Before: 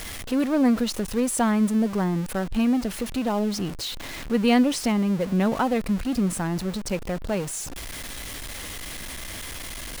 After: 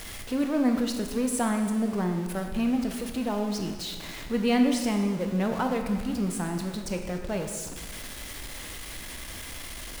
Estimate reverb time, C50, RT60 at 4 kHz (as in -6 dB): 1.5 s, 6.0 dB, 1.3 s